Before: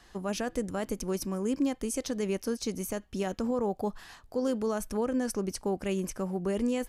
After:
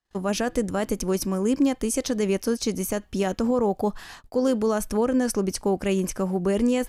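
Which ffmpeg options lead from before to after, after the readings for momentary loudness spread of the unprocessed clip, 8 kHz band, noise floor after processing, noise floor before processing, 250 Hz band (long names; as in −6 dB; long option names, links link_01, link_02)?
5 LU, +7.0 dB, −54 dBFS, −57 dBFS, +7.0 dB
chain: -af "acontrast=88,agate=range=-37dB:threshold=-45dB:ratio=16:detection=peak"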